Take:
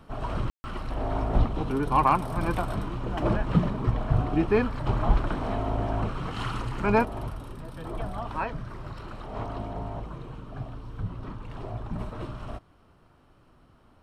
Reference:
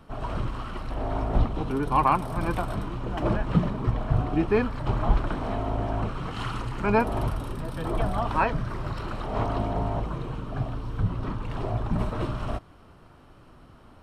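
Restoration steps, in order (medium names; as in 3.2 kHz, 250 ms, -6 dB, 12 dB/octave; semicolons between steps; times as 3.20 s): clip repair -10 dBFS; room tone fill 0.50–0.64 s; gain correction +7 dB, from 7.05 s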